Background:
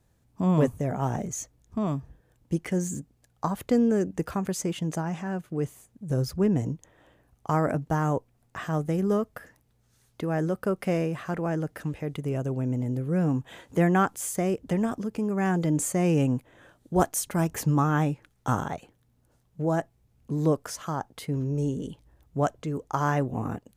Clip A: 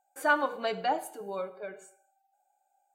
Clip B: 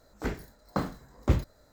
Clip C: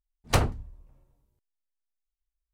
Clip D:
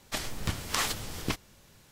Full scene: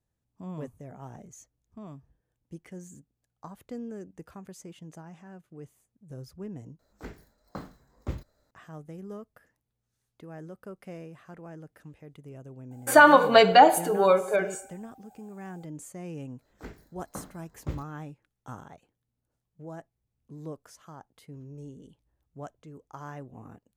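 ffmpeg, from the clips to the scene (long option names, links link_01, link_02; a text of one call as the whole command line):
ffmpeg -i bed.wav -i cue0.wav -i cue1.wav -filter_complex "[2:a]asplit=2[link_01][link_02];[0:a]volume=-16dB[link_03];[1:a]alimiter=level_in=19dB:limit=-1dB:release=50:level=0:latency=1[link_04];[link_03]asplit=2[link_05][link_06];[link_05]atrim=end=6.794[link_07];[link_01]atrim=end=1.72,asetpts=PTS-STARTPTS,volume=-10dB[link_08];[link_06]atrim=start=8.506[link_09];[link_04]atrim=end=2.94,asetpts=PTS-STARTPTS,volume=-4dB,afade=type=in:duration=0.004:curve=hsin,afade=type=out:start_time=2.936:duration=0.004:curve=hsin,adelay=12710[link_10];[link_02]atrim=end=1.72,asetpts=PTS-STARTPTS,volume=-11dB,afade=type=in:duration=0.004:curve=hsin,afade=type=out:start_time=1.716:duration=0.004:curve=hsin,adelay=16390[link_11];[link_07][link_08]acrossfade=duration=0.004:curve1=hsin:curve2=hsin[link_12];[link_12][link_09]acrossfade=duration=0.004:curve1=hsin:curve2=hsin[link_13];[link_13][link_10][link_11]amix=inputs=3:normalize=0" out.wav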